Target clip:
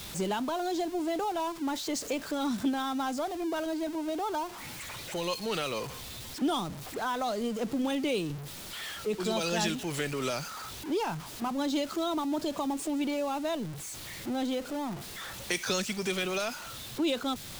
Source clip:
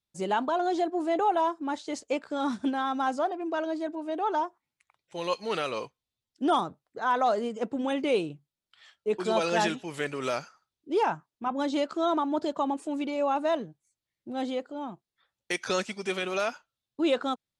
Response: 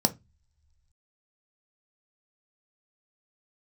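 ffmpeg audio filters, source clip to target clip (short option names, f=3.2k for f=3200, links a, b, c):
-filter_complex "[0:a]aeval=exprs='val(0)+0.5*0.0133*sgn(val(0))':c=same,acrossover=split=230|3000[a][b][c];[b]acompressor=threshold=-37dB:ratio=3[d];[a][d][c]amix=inputs=3:normalize=0,volume=3dB"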